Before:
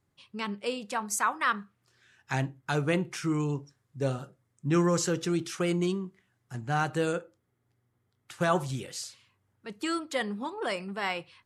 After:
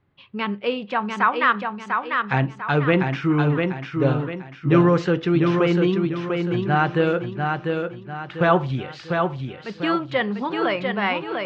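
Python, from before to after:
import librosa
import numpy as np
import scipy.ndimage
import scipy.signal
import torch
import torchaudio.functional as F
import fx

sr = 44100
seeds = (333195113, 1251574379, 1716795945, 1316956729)

p1 = scipy.signal.sosfilt(scipy.signal.butter(4, 3300.0, 'lowpass', fs=sr, output='sos'), x)
p2 = p1 + fx.echo_feedback(p1, sr, ms=696, feedback_pct=39, wet_db=-4.5, dry=0)
y = p2 * librosa.db_to_amplitude(8.5)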